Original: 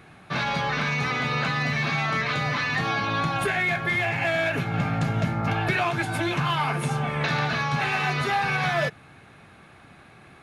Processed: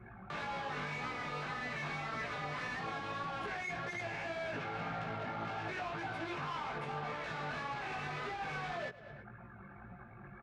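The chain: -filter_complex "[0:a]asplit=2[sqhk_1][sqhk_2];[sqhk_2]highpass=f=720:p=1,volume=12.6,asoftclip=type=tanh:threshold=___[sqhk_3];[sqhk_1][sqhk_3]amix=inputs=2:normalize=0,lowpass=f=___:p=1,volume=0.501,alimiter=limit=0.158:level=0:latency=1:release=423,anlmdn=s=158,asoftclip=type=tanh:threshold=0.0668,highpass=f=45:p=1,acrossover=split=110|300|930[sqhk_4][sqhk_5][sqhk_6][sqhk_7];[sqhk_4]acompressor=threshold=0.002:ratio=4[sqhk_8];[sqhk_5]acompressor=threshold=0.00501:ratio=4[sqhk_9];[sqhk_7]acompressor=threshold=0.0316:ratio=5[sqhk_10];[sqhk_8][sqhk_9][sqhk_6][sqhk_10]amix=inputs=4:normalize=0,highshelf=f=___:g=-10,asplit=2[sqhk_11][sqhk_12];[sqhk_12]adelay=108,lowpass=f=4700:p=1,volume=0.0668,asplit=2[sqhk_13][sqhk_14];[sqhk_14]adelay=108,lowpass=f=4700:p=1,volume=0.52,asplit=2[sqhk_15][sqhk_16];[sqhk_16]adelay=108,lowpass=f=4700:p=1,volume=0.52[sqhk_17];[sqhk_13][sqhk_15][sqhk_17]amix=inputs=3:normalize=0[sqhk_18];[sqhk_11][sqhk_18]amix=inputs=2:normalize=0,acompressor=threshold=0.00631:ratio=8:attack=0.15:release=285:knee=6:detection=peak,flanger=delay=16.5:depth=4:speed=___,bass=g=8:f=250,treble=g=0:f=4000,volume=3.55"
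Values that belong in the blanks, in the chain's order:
0.266, 1800, 8000, 1.8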